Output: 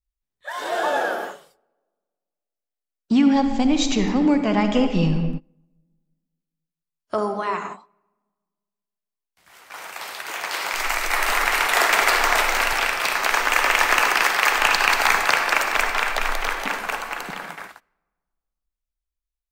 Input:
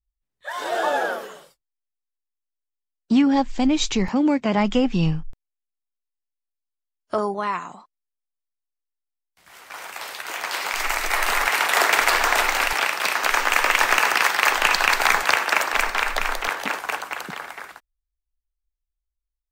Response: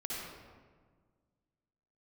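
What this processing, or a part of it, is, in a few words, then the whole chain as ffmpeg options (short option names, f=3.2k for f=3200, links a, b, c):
keyed gated reverb: -filter_complex "[0:a]asplit=3[a][b][c];[1:a]atrim=start_sample=2205[d];[b][d]afir=irnorm=-1:irlink=0[e];[c]apad=whole_len=860417[f];[e][f]sidechaingate=range=-25dB:threshold=-37dB:ratio=16:detection=peak,volume=-4.5dB[g];[a][g]amix=inputs=2:normalize=0,volume=-3dB"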